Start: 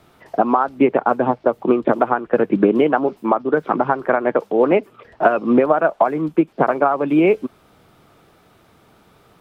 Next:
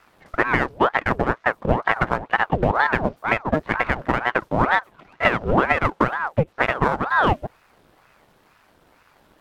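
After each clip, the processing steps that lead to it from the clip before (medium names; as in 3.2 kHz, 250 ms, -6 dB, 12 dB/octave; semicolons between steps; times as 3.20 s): partial rectifier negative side -7 dB; ring modulator with a swept carrier 750 Hz, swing 80%, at 2.1 Hz; trim +1 dB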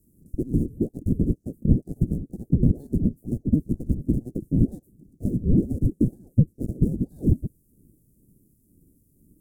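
inverse Chebyshev band-stop 950–3100 Hz, stop band 70 dB; trim +5 dB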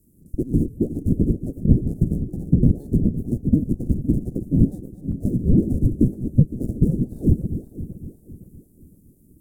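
backward echo that repeats 256 ms, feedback 61%, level -11 dB; trim +3 dB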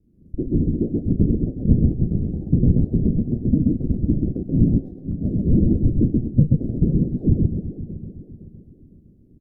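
distance through air 300 m; on a send: loudspeakers at several distances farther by 12 m -9 dB, 45 m -2 dB; on the sum: trim -1 dB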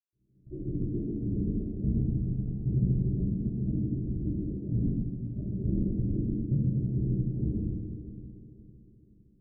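reverberation RT60 1.4 s, pre-delay 126 ms; trim -2 dB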